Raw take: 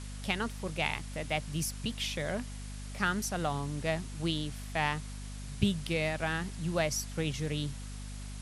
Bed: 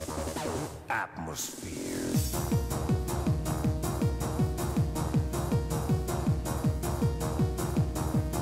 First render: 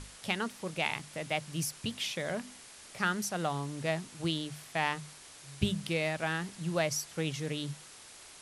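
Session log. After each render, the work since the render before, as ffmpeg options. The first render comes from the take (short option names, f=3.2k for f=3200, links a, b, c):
-af "bandreject=f=50:t=h:w=6,bandreject=f=100:t=h:w=6,bandreject=f=150:t=h:w=6,bandreject=f=200:t=h:w=6,bandreject=f=250:t=h:w=6"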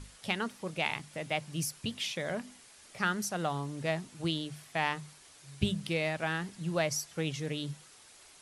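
-af "afftdn=nr=6:nf=-52"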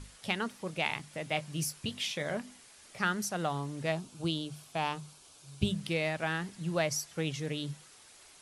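-filter_complex "[0:a]asettb=1/sr,asplit=3[a][b][c];[a]atrim=end=1.314[d];[b]atrim=start=1.31:end=2.37,asetpts=PTS-STARTPTS,afade=t=in:d=0.004:c=qsin,afade=t=out:st=1.056:d=0.004:c=qsin,asplit=2[e][f];[f]adelay=20,volume=-9.5dB[g];[e][g]amix=inputs=2:normalize=0,atrim=end_sample=46746[h];[c]atrim=start=2.366[i];[d][h]acrossfade=d=0.004:c1=hsin:c2=qsin[j];[j][i]acrossfade=d=0.004:c1=qsin:c2=hsin,asettb=1/sr,asplit=3[k][l][m];[k]atrim=end=3.924[n];[l]atrim=start=3.92:end=5.71,asetpts=PTS-STARTPTS,afade=t=in:d=0.004:c=qsin,afade=t=out:st=1.786:d=0.004:c=qsin,equalizer=f=1.9k:w=4.1:g=-14[o];[m]atrim=start=5.706[p];[n][o]acrossfade=d=0.004:c1=hsin:c2=qsin[q];[q][p]acrossfade=d=0.004:c1=qsin:c2=hsin"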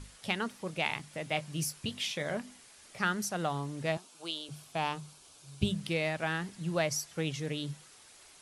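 -filter_complex "[0:a]asettb=1/sr,asplit=3[a][b][c];[a]atrim=end=3.974[d];[b]atrim=start=3.97:end=4.49,asetpts=PTS-STARTPTS,afade=t=in:d=0.004:c=qsin,afade=t=out:st=0.516:d=0.004:c=qsin,highpass=580[e];[c]atrim=start=4.486[f];[d][e]acrossfade=d=0.004:c1=hsin:c2=qsin[g];[g][f]acrossfade=d=0.004:c1=qsin:c2=hsin"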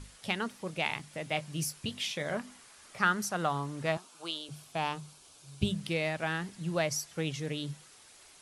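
-filter_complex "[0:a]asettb=1/sr,asplit=3[a][b][c];[a]atrim=end=2.324[d];[b]atrim=start=2.32:end=4.37,asetpts=PTS-STARTPTS,afade=t=in:d=0.004:c=qsin,afade=t=out:st=2.046:d=0.004:c=qsin,equalizer=f=1.2k:w=1.5:g=6[e];[c]atrim=start=4.366[f];[d][e]acrossfade=d=0.004:c1=hsin:c2=qsin[g];[g][f]acrossfade=d=0.004:c1=qsin:c2=hsin"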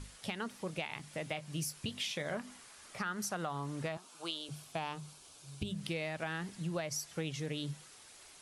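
-af "alimiter=limit=-21.5dB:level=0:latency=1:release=221,acompressor=threshold=-35dB:ratio=3"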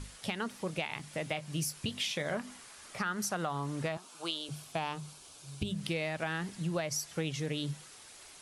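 -af "volume=3.5dB"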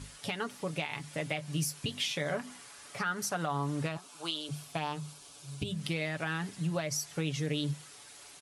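-af "highpass=42,aecho=1:1:7:0.48"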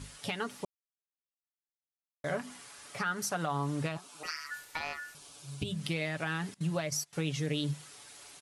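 -filter_complex "[0:a]asettb=1/sr,asplit=3[a][b][c];[a]atrim=end=4.234[d];[b]atrim=start=4.23:end=5.15,asetpts=PTS-STARTPTS,afade=t=in:d=0.004:c=qsin,afade=t=out:st=0.916:d=0.004:c=qsin,aeval=exprs='val(0)*sin(2*PI*1600*n/s)':c=same[e];[c]atrim=start=5.146[f];[d][e]acrossfade=d=0.004:c1=hsin:c2=qsin[g];[g][f]acrossfade=d=0.004:c1=qsin:c2=hsin,asettb=1/sr,asplit=3[h][i][j];[h]atrim=end=6.544[k];[i]atrim=start=6.54:end=7.13,asetpts=PTS-STARTPTS,afade=t=in:d=0.004:c=qsin,afade=t=out:st=0.586:d=0.004:c=qsin,agate=range=-20dB:threshold=-39dB:ratio=16:release=100:detection=peak[l];[j]atrim=start=7.126[m];[k][l]acrossfade=d=0.004:c1=hsin:c2=qsin[n];[n][m]acrossfade=d=0.004:c1=qsin:c2=hsin,asplit=3[o][p][q];[o]atrim=end=0.65,asetpts=PTS-STARTPTS,afade=t=out:st=0.646:d=0.004:c=hsin[r];[p]atrim=start=0.65:end=2.24,asetpts=PTS-STARTPTS,volume=0[s];[q]atrim=start=2.24,asetpts=PTS-STARTPTS,afade=t=in:d=0.004:c=hsin[t];[r][s][t]concat=n=3:v=0:a=1"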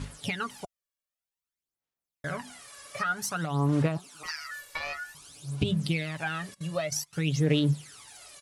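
-af "aphaser=in_gain=1:out_gain=1:delay=1.8:decay=0.66:speed=0.53:type=sinusoidal"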